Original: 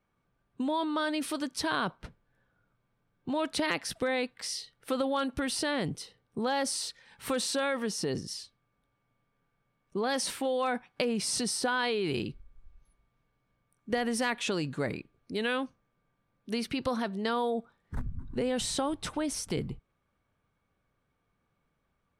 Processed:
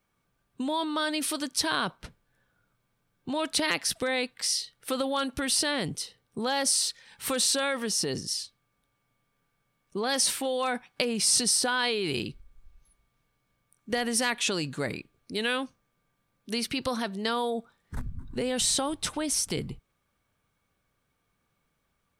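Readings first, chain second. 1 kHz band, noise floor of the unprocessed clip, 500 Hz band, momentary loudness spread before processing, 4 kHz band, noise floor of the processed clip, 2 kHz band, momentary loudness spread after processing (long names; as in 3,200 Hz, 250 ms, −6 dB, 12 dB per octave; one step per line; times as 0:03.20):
+1.0 dB, −78 dBFS, +0.5 dB, 11 LU, +7.0 dB, −76 dBFS, +3.0 dB, 12 LU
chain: high-shelf EQ 2,900 Hz +10.5 dB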